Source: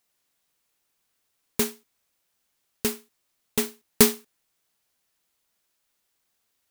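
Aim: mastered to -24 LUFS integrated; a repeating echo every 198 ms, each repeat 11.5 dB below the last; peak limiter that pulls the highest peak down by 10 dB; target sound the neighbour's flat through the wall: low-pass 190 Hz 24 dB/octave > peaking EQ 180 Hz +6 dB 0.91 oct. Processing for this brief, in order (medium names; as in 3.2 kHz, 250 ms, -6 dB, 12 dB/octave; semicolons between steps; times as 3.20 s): peak limiter -11.5 dBFS; low-pass 190 Hz 24 dB/octave; peaking EQ 180 Hz +6 dB 0.91 oct; feedback delay 198 ms, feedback 27%, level -11.5 dB; trim +17.5 dB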